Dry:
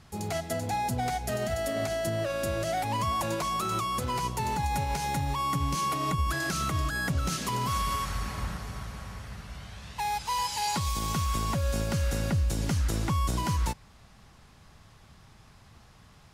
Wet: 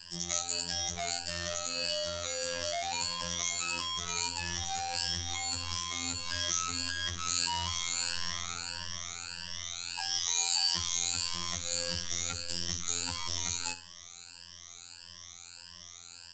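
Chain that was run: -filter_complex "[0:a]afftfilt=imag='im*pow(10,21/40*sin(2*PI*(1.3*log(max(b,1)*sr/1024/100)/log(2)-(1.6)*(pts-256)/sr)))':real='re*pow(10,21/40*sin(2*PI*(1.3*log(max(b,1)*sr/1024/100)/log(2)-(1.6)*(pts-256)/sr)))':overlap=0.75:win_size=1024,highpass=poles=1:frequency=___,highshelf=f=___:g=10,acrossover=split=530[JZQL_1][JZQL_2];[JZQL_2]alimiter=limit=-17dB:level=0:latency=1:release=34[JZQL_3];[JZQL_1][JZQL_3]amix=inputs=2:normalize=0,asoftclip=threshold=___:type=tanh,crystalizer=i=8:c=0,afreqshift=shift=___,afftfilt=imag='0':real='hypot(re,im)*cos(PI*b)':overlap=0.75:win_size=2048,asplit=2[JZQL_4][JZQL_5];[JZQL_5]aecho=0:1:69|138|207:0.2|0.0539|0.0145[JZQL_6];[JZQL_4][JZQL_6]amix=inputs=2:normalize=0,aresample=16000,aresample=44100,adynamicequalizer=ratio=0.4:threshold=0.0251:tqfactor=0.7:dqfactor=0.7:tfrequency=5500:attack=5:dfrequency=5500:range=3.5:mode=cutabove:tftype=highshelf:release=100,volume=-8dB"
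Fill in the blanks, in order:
41, 3000, -26.5dB, -48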